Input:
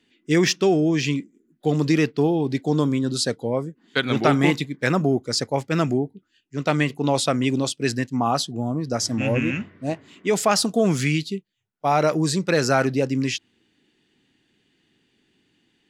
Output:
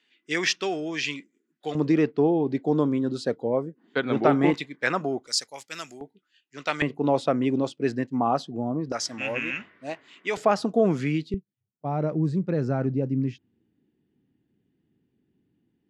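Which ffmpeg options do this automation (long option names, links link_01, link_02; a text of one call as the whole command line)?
ffmpeg -i in.wav -af "asetnsamples=nb_out_samples=441:pad=0,asendcmd='1.75 bandpass f 510;4.54 bandpass f 1400;5.27 bandpass f 7500;6.01 bandpass f 2500;6.82 bandpass f 480;8.92 bandpass f 2000;10.37 bandpass f 480;11.34 bandpass f 120',bandpass=frequency=2200:width_type=q:width=0.56:csg=0" out.wav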